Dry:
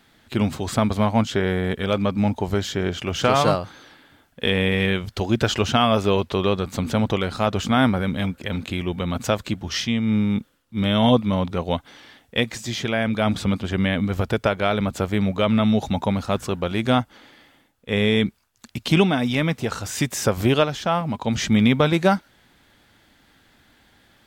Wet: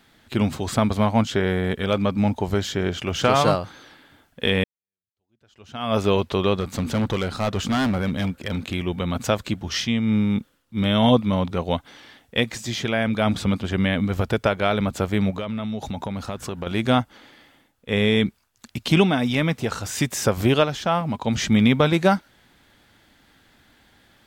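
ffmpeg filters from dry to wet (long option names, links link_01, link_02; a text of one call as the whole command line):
ffmpeg -i in.wav -filter_complex "[0:a]asettb=1/sr,asplit=3[link_01][link_02][link_03];[link_01]atrim=end=6.604[link_04];[link_02]atrim=start=6.6:end=8.74,asetpts=PTS-STARTPTS,afade=type=in:duration=0.004:curve=qsin,afade=type=out:start_time=2.136:duration=0.004:curve=qsin,volume=18dB,asoftclip=hard,volume=-18dB[link_05];[link_03]atrim=start=8.736[link_06];[link_04][link_05]acrossfade=duration=0.004:curve1=hsin:curve2=qsin[link_07];[link_07][link_06]acrossfade=duration=0.004:curve1=qsin:curve2=hsin,asettb=1/sr,asplit=3[link_08][link_09][link_10];[link_08]atrim=end=15.304[link_11];[link_09]atrim=start=15.3:end=16.67,asetpts=PTS-STARTPTS,afade=type=in:duration=0.004:curve=qsin,afade=type=out:start_time=1.366:duration=0.004:curve=qsin,acompressor=threshold=-25dB:ratio=6:attack=3.2:release=140:knee=1:detection=peak[link_12];[link_10]atrim=start=16.666[link_13];[link_11][link_12]acrossfade=duration=0.004:curve1=hsin:curve2=qsin[link_14];[link_14][link_13]acrossfade=duration=0.004:curve1=qsin:curve2=hsin,asplit=2[link_15][link_16];[link_15]atrim=end=4.64,asetpts=PTS-STARTPTS,afade=type=out:start_time=4.636:duration=0.004:curve=hsin[link_17];[link_16]atrim=start=4.64,asetpts=PTS-STARTPTS,afade=type=in:duration=1.33:curve=exp[link_18];[link_17][link_18]concat=n=2:v=0:a=1" out.wav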